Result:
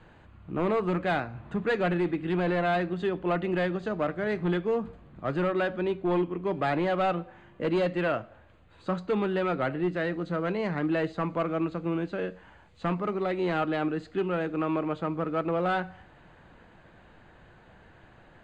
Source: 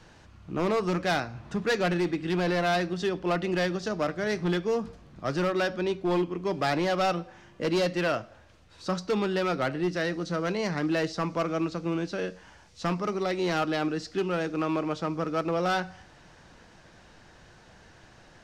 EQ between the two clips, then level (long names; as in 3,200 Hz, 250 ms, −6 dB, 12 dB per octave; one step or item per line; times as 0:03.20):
moving average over 8 samples
0.0 dB